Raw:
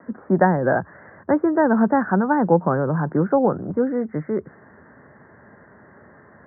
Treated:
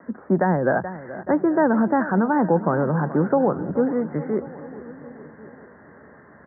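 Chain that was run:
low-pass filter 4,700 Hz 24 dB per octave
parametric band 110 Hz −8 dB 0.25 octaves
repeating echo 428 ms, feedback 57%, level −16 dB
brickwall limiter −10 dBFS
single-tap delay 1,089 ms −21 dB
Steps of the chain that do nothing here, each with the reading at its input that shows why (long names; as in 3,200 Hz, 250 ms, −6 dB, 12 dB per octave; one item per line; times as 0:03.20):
low-pass filter 4,700 Hz: nothing at its input above 1,800 Hz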